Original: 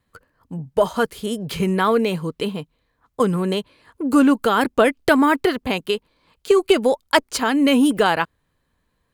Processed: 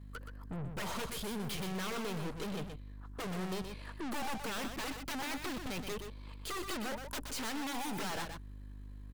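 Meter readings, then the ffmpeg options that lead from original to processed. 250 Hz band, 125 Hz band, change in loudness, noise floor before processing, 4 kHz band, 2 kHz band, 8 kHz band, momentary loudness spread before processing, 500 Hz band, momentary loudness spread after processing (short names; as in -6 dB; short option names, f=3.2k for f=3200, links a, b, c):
-21.5 dB, -13.0 dB, -20.5 dB, -71 dBFS, -14.5 dB, -18.0 dB, -9.5 dB, 11 LU, -24.0 dB, 11 LU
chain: -filter_complex "[0:a]aeval=exprs='0.133*(abs(mod(val(0)/0.133+3,4)-2)-1)':c=same,aeval=exprs='val(0)+0.00355*(sin(2*PI*50*n/s)+sin(2*PI*2*50*n/s)/2+sin(2*PI*3*50*n/s)/3+sin(2*PI*4*50*n/s)/4+sin(2*PI*5*50*n/s)/5)':c=same,aeval=exprs='(tanh(126*val(0)+0.5)-tanh(0.5))/126':c=same,asplit=2[a][b];[b]aecho=0:1:123:0.447[c];[a][c]amix=inputs=2:normalize=0,volume=3.5dB"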